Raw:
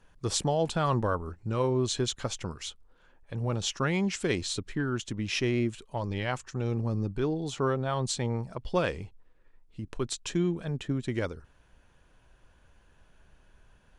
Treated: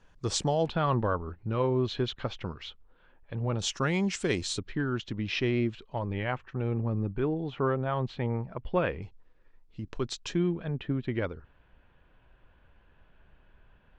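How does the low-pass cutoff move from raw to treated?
low-pass 24 dB/octave
7.7 kHz
from 0.66 s 3.7 kHz
from 3.59 s 9.2 kHz
from 4.59 s 4.4 kHz
from 5.99 s 2.8 kHz
from 9.02 s 6.1 kHz
from 10.35 s 3.3 kHz

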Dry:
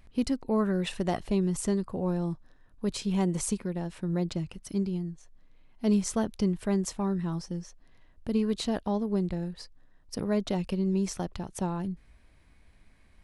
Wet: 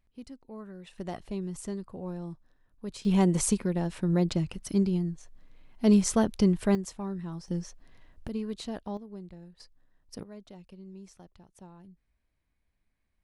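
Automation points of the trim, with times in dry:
-17 dB
from 0.98 s -8 dB
from 3.05 s +4 dB
from 6.75 s -6 dB
from 7.48 s +3 dB
from 8.28 s -7 dB
from 8.97 s -15 dB
from 9.60 s -7 dB
from 10.23 s -19 dB

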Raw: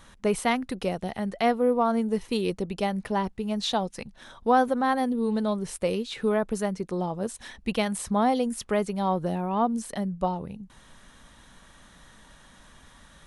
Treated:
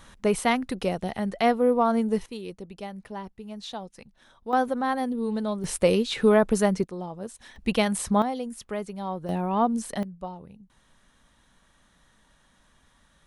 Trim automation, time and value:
+1.5 dB
from 2.26 s -10 dB
from 4.53 s -2 dB
from 5.64 s +6 dB
from 6.84 s -6 dB
from 7.56 s +3 dB
from 8.22 s -6.5 dB
from 9.29 s +1.5 dB
from 10.03 s -9.5 dB

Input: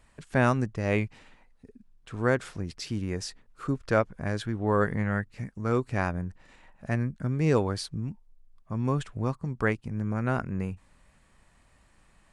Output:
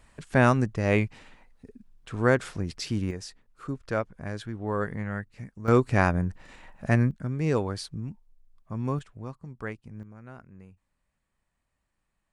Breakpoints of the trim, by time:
+3 dB
from 3.11 s -4.5 dB
from 5.68 s +6 dB
from 7.11 s -2 dB
from 8.99 s -9.5 dB
from 10.03 s -18 dB

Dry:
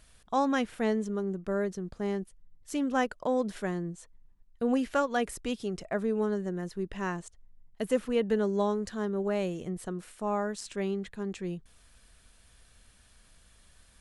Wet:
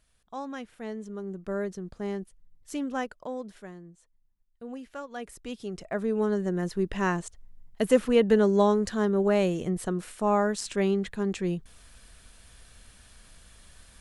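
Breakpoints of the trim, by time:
0.78 s -10 dB
1.51 s -1 dB
2.74 s -1 dB
3.81 s -12.5 dB
4.94 s -12.5 dB
5.69 s -2 dB
6.66 s +6.5 dB

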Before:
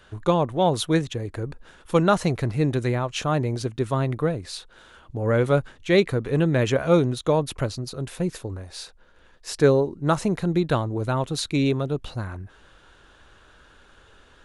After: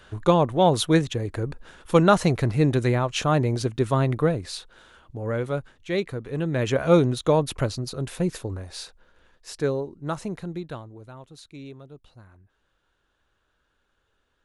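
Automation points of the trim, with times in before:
4.35 s +2 dB
5.51 s -7.5 dB
6.32 s -7.5 dB
6.89 s +1 dB
8.71 s +1 dB
9.71 s -8 dB
10.37 s -8 dB
11.11 s -19 dB

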